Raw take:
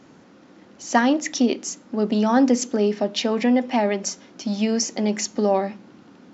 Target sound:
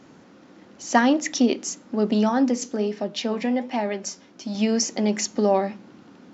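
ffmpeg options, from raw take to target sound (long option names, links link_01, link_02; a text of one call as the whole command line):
ffmpeg -i in.wav -filter_complex "[0:a]asettb=1/sr,asplit=3[link_01][link_02][link_03];[link_01]atrim=end=2.294[link_04];[link_02]atrim=start=2.29:end=4.55,asetpts=PTS-STARTPTS,afade=type=in:duration=0.004:curve=qsin,afade=type=out:start_time=2.256:duration=0.004:curve=qsin,flanger=delay=5.2:depth=6.3:regen=75:speed=1.3:shape=triangular[link_05];[link_03]atrim=start=4.546[link_06];[link_04][link_05]acrossfade=duration=0.004:curve1=hsin:curve2=qsin[link_07];[link_07][link_06]acrossfade=duration=0.004:curve1=qsin:curve2=hsin" out.wav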